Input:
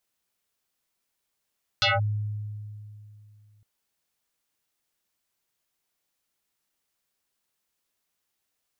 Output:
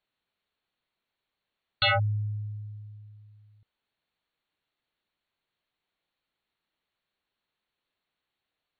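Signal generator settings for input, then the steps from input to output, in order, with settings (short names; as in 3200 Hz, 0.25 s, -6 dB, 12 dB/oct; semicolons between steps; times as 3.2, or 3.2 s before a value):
FM tone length 1.81 s, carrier 105 Hz, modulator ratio 6.59, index 7, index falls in 0.18 s linear, decay 2.77 s, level -18 dB
brick-wall FIR low-pass 4500 Hz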